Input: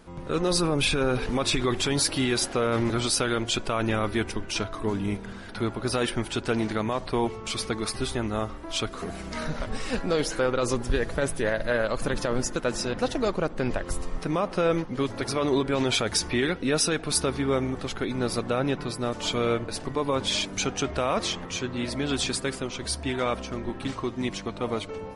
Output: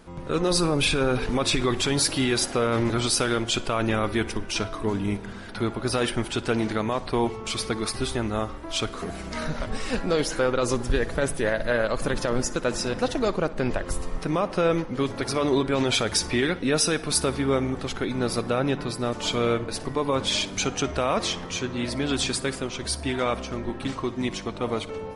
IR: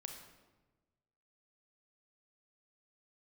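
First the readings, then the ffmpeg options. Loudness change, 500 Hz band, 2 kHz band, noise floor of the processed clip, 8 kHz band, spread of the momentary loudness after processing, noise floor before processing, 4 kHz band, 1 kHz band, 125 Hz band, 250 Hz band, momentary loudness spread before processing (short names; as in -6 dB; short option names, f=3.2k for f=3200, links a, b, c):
+1.5 dB, +1.5 dB, +1.5 dB, -37 dBFS, +1.5 dB, 7 LU, -39 dBFS, +1.5 dB, +1.5 dB, +1.5 dB, +1.5 dB, 7 LU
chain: -filter_complex "[0:a]asplit=2[a][b];[1:a]atrim=start_sample=2205,asetrate=41454,aresample=44100,adelay=59[c];[b][c]afir=irnorm=-1:irlink=0,volume=-14.5dB[d];[a][d]amix=inputs=2:normalize=0,volume=1.5dB"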